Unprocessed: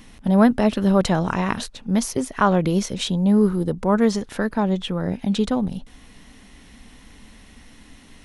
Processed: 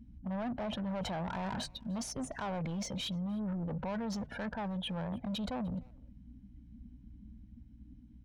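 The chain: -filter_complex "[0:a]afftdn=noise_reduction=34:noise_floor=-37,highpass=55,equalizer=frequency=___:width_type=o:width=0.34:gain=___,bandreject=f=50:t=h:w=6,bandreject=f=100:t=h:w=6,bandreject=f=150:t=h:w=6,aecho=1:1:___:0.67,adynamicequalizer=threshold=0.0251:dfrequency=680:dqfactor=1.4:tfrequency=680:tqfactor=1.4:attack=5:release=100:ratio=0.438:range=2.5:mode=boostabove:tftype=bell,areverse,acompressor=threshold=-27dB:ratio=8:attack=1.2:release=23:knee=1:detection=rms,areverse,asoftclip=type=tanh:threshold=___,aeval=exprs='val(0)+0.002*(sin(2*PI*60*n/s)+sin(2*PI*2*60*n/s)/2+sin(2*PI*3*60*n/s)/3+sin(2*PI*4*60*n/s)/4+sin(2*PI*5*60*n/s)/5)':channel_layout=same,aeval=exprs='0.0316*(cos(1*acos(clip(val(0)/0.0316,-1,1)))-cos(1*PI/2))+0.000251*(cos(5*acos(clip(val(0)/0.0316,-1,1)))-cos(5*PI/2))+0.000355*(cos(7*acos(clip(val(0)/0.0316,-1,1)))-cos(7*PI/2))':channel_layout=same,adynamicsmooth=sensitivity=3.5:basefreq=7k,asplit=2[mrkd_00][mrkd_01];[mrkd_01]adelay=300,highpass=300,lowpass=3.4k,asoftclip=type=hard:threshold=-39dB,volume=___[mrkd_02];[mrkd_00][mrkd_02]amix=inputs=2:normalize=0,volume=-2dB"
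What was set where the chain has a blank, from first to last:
1k, 2.5, 1.3, -31dB, -21dB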